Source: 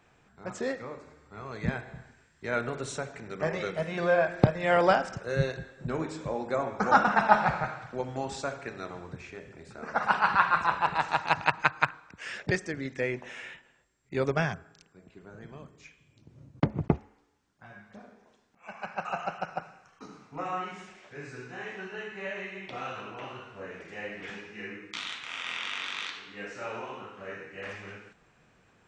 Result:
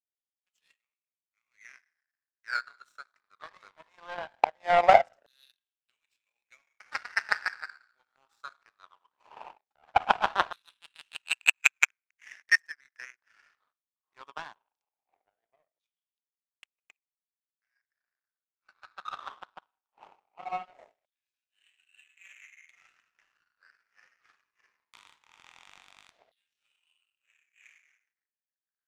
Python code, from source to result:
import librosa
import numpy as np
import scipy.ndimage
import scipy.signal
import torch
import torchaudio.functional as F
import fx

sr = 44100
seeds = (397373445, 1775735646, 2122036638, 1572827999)

y = fx.dmg_wind(x, sr, seeds[0], corner_hz=410.0, level_db=-42.0)
y = fx.filter_lfo_highpass(y, sr, shape='saw_down', hz=0.19, low_hz=620.0, high_hz=3600.0, q=7.4)
y = fx.power_curve(y, sr, exponent=2.0)